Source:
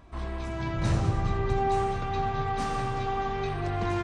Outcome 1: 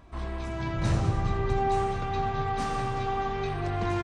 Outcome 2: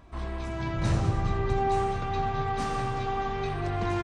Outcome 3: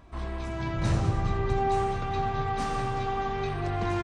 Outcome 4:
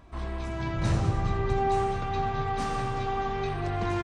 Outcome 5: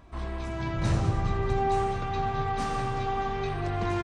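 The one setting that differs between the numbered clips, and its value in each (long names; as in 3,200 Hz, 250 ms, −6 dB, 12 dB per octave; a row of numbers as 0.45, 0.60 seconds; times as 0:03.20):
repeating echo, delay time: 256, 855, 1,266, 107, 577 milliseconds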